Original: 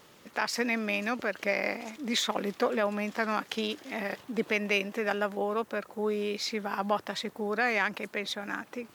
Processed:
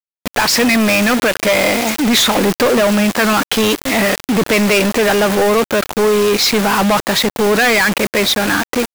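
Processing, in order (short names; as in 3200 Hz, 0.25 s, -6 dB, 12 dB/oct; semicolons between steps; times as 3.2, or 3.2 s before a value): bit-crush 7-bit; sample leveller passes 5; gain +6.5 dB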